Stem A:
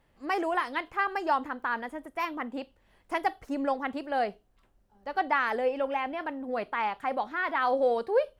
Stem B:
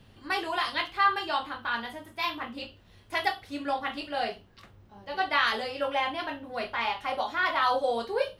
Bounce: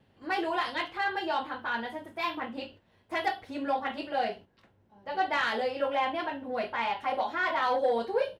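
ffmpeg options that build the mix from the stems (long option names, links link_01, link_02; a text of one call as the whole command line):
ffmpeg -i stem1.wav -i stem2.wav -filter_complex "[0:a]alimiter=level_in=1dB:limit=-24dB:level=0:latency=1:release=174,volume=-1dB,volume=-2.5dB,asplit=2[link_01][link_02];[1:a]bandreject=frequency=1200:width=5.1,asoftclip=type=tanh:threshold=-20.5dB,adelay=1.9,volume=2.5dB[link_03];[link_02]apad=whole_len=370211[link_04];[link_03][link_04]sidechaingate=range=-8dB:threshold=-57dB:ratio=16:detection=peak[link_05];[link_01][link_05]amix=inputs=2:normalize=0,highpass=frequency=180:poles=1,highshelf=frequency=2900:gain=-11.5" out.wav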